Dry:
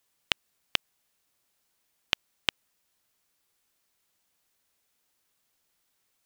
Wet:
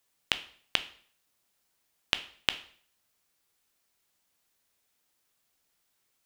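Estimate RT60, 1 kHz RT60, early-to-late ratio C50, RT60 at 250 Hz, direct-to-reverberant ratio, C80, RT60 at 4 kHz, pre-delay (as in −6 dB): 0.50 s, 0.50 s, 15.0 dB, 0.55 s, 10.0 dB, 19.0 dB, 0.50 s, 5 ms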